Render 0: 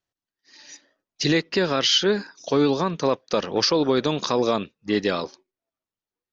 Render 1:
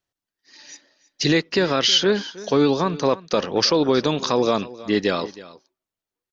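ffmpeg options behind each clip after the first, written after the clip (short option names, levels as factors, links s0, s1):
-af "aecho=1:1:318:0.119,volume=1.26"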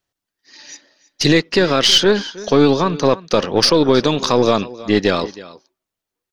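-af "aeval=exprs='0.501*(cos(1*acos(clip(val(0)/0.501,-1,1)))-cos(1*PI/2))+0.0282*(cos(4*acos(clip(val(0)/0.501,-1,1)))-cos(4*PI/2))+0.00562*(cos(8*acos(clip(val(0)/0.501,-1,1)))-cos(8*PI/2))':c=same,volume=1.78"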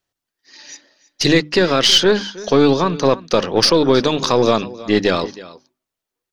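-af "bandreject=f=50:t=h:w=6,bandreject=f=100:t=h:w=6,bandreject=f=150:t=h:w=6,bandreject=f=200:t=h:w=6,bandreject=f=250:t=h:w=6,bandreject=f=300:t=h:w=6"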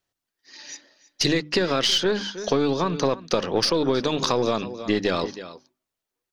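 -af "acompressor=threshold=0.158:ratio=6,volume=0.794"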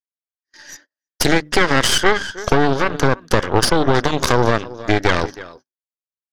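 -af "agate=range=0.0158:threshold=0.00562:ratio=16:detection=peak,equalizer=f=200:t=o:w=0.33:g=-12,equalizer=f=1600:t=o:w=0.33:g=11,equalizer=f=2500:t=o:w=0.33:g=-8,equalizer=f=4000:t=o:w=0.33:g=-9,aeval=exprs='0.708*(cos(1*acos(clip(val(0)/0.708,-1,1)))-cos(1*PI/2))+0.224*(cos(8*acos(clip(val(0)/0.708,-1,1)))-cos(8*PI/2))':c=same,volume=1.19"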